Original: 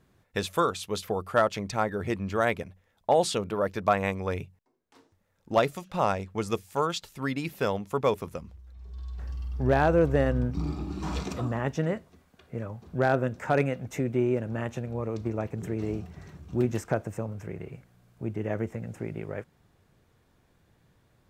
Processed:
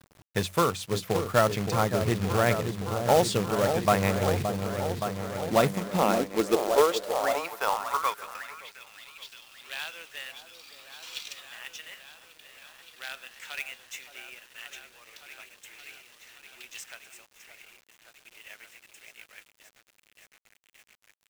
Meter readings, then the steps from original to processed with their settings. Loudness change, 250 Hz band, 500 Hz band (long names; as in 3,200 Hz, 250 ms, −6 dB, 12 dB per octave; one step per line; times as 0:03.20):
+2.0 dB, −2.0 dB, −0.5 dB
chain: echo whose low-pass opens from repeat to repeat 571 ms, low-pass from 750 Hz, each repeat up 1 octave, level −6 dB
high-pass filter sweep 110 Hz → 3,000 Hz, 0:05.27–0:09.07
log-companded quantiser 4 bits